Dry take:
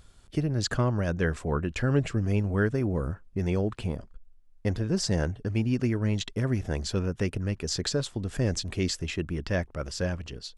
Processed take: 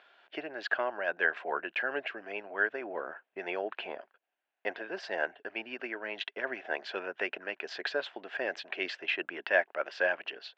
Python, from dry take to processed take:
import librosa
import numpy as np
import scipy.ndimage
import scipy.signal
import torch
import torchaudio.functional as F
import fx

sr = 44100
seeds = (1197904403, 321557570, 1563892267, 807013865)

y = fx.rider(x, sr, range_db=4, speed_s=0.5)
y = fx.cabinet(y, sr, low_hz=470.0, low_slope=24, high_hz=3100.0, hz=(480.0, 700.0, 1200.0, 1600.0, 2700.0), db=(-7, 4, -6, 7, 4))
y = F.gain(torch.from_numpy(y), 2.0).numpy()